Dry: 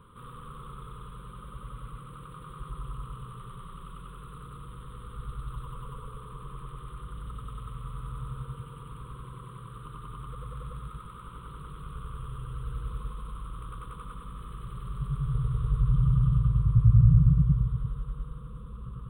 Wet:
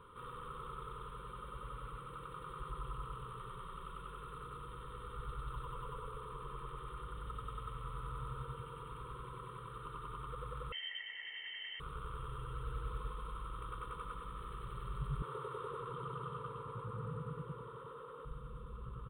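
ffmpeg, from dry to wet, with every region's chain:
-filter_complex "[0:a]asettb=1/sr,asplit=3[a][b][c];[a]atrim=end=10.724[d];[b]atrim=start=10.72:end=11.8,asetpts=PTS-STARTPTS,afade=t=in:d=0.004:c=qsin,afade=t=out:st=1.076:d=0.004:c=qsin,highpass=f=120:p=1,lowpass=f=2.7k:t=q:w=0.5098,lowpass=f=2.7k:t=q:w=0.6013,lowpass=f=2.7k:t=q:w=0.9,lowpass=f=2.7k:t=q:w=2.563,afreqshift=-3200[e];[c]atrim=start=11.796[f];[d][e]acrossfade=d=0.004:c1=hsin:c2=qsin[g];[g][f]acrossfade=d=0.004:c1=qsin:c2=hsin,asettb=1/sr,asplit=3[h][i][j];[h]atrim=end=15.224[k];[i]atrim=start=15.22:end=18.25,asetpts=PTS-STARTPTS,afade=t=in:d=0.004:c=qsin,afade=t=out:st=3.026:d=0.004:c=qsin,highpass=370,equalizer=f=500:w=0.55:g=9[l];[j]atrim=start=18.246[m];[k][l]acrossfade=d=0.004:c1=hsin:c2=qsin[n];[n][m]acrossfade=d=0.004:c1=qsin:c2=hsin,bass=f=250:g=-9,treble=f=4k:g=-7,aecho=1:1:2.2:0.35"

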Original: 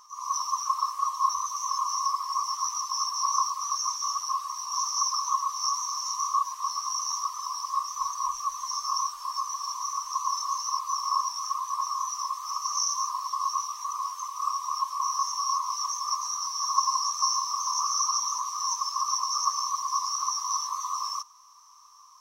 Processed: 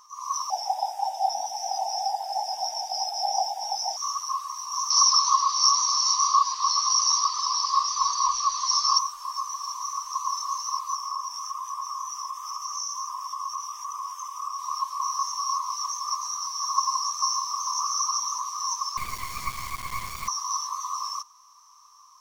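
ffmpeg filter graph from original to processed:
-filter_complex "[0:a]asettb=1/sr,asplit=3[a][b][c];[a]atrim=end=0.504[d];[b]atrim=start=0.5:end=3.97,asetpts=PTS-STARTPTS,afade=t=in:d=0.004:c=qsin,afade=t=out:st=3.466:d=0.004:c=qsin,asuperstop=centerf=4500:order=12:qfactor=6.4,afreqshift=-310[e];[c]atrim=start=3.966[f];[d][e]acrossfade=d=0.004:c1=hsin:c2=qsin[g];[g][f]acrossfade=d=0.004:c1=qsin:c2=hsin,asettb=1/sr,asplit=3[h][i][j];[h]atrim=end=4.904[k];[i]atrim=start=4.9:end=8.99,asetpts=PTS-STARTPTS,afade=t=in:d=0.004:c=qsin,afade=t=out:st=4.086:d=0.004:c=qsin,lowpass=f=4.6k:t=q:w=7.8,acontrast=25[l];[j]atrim=start=8.986[m];[k][l]acrossfade=d=0.004:c1=hsin:c2=qsin[n];[n][m]acrossfade=d=0.004:c1=qsin:c2=hsin,asettb=1/sr,asplit=3[o][p][q];[o]atrim=end=10.954[r];[p]atrim=start=10.95:end=14.59,asetpts=PTS-STARTPTS,afade=t=in:d=0.004:c=qsin,afade=t=out:st=3.636:d=0.004:c=qsin,asuperstop=centerf=4200:order=8:qfactor=4,acompressor=threshold=-31dB:ratio=2:attack=3.2:release=140:knee=1:detection=peak[s];[q]atrim=start=14.586[t];[r][s]acrossfade=d=0.004:c1=hsin:c2=qsin[u];[u][t]acrossfade=d=0.004:c1=qsin:c2=hsin,asettb=1/sr,asplit=3[v][w][x];[v]atrim=end=18.974[y];[w]atrim=start=18.97:end=20.28,asetpts=PTS-STARTPTS,afade=t=in:d=0.004:c=qsin,afade=t=out:st=1.306:d=0.004:c=qsin,lowpass=f=4.4k:w=0.5412,lowpass=f=4.4k:w=1.3066,acrusher=bits=3:dc=4:mix=0:aa=0.000001[z];[x]atrim=start=20.276[aa];[y][z]acrossfade=d=0.004:c1=hsin:c2=qsin[ab];[ab][aa]acrossfade=d=0.004:c1=qsin:c2=hsin"

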